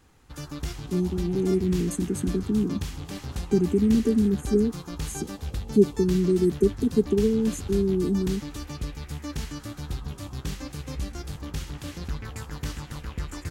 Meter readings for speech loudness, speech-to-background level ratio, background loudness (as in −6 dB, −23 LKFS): −24.5 LKFS, 11.5 dB, −36.0 LKFS